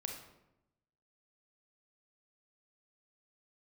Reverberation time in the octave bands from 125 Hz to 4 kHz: 1.2, 1.1, 0.95, 0.85, 0.70, 0.55 seconds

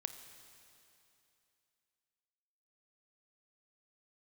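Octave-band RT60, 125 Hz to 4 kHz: 2.8, 2.8, 2.8, 2.8, 2.8, 2.8 seconds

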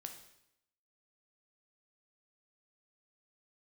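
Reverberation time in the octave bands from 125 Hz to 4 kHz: 0.80, 0.85, 0.80, 0.80, 0.80, 0.75 seconds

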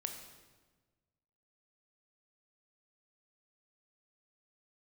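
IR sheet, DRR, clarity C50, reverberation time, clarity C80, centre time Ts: 4.5 dB, 6.5 dB, 1.3 s, 8.0 dB, 29 ms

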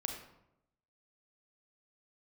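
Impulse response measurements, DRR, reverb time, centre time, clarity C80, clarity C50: 3.0 dB, 0.85 s, 29 ms, 8.0 dB, 5.0 dB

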